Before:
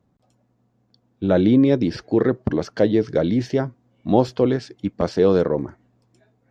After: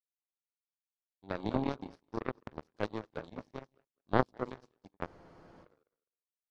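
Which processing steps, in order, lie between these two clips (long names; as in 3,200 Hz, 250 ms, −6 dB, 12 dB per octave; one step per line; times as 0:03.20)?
mains-hum notches 60/120/180/240/300/360/420/480/540 Hz
echo with a time of its own for lows and highs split 320 Hz, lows 90 ms, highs 205 ms, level −8 dB
power curve on the samples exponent 3
frozen spectrum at 0:05.09, 0.54 s
level −4.5 dB
AAC 64 kbit/s 44,100 Hz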